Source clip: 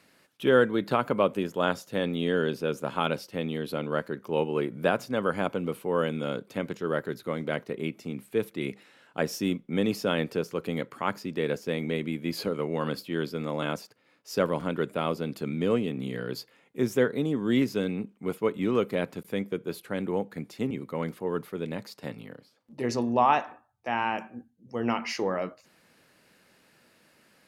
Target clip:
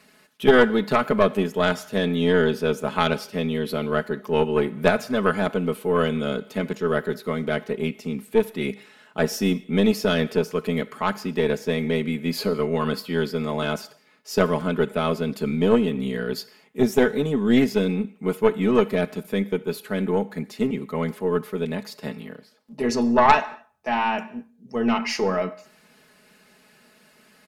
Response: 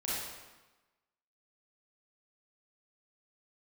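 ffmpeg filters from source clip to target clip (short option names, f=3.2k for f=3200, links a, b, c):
-filter_complex "[0:a]aecho=1:1:4.7:0.75,aeval=exprs='0.447*(cos(1*acos(clip(val(0)/0.447,-1,1)))-cos(1*PI/2))+0.112*(cos(4*acos(clip(val(0)/0.447,-1,1)))-cos(4*PI/2))+0.0355*(cos(6*acos(clip(val(0)/0.447,-1,1)))-cos(6*PI/2))':c=same,asplit=2[a][b];[1:a]atrim=start_sample=2205,afade=t=out:st=0.29:d=0.01,atrim=end_sample=13230,lowshelf=f=460:g=-12[c];[b][c]afir=irnorm=-1:irlink=0,volume=-19.5dB[d];[a][d]amix=inputs=2:normalize=0,volume=3.5dB"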